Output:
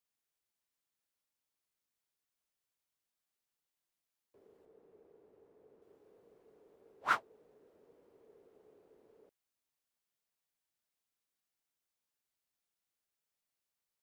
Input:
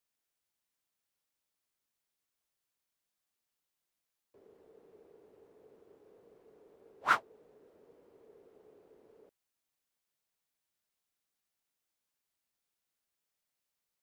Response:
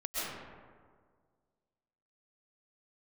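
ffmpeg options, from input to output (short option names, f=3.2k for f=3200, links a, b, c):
-filter_complex "[0:a]asettb=1/sr,asplit=3[a][b][c];[a]atrim=end=4.654[d];[b]atrim=start=4.65:end=5.82,asetpts=PTS-STARTPTS,afade=t=in:d=0.004:c=qsin,afade=t=out:st=1.166:d=0.004:c=qsin,highshelf=f=2.9k:g=-8.5[e];[c]atrim=start=5.816[f];[d][e]acrossfade=d=0.004:c1=hsin:c2=qsin[g];[g][f]acrossfade=d=0.004:c1=qsin:c2=hsin,volume=-3.5dB"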